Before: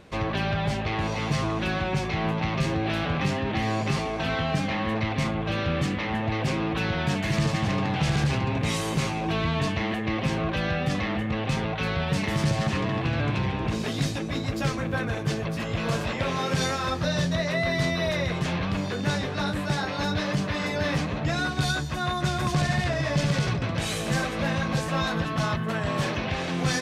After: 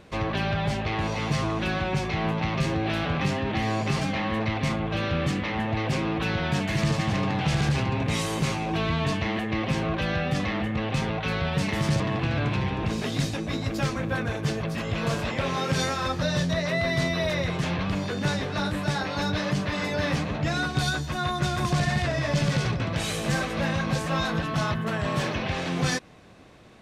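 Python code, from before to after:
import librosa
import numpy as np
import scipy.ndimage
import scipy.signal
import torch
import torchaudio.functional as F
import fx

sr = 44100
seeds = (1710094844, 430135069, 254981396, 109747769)

y = fx.edit(x, sr, fx.cut(start_s=4.01, length_s=0.55),
    fx.cut(start_s=12.55, length_s=0.27), tone=tone)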